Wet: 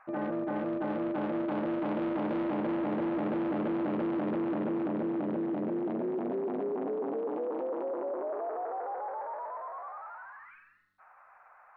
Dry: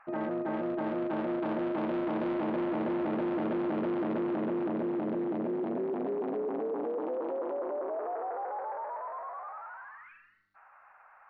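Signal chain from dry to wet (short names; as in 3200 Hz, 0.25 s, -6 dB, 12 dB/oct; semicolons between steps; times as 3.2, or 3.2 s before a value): speed mistake 25 fps video run at 24 fps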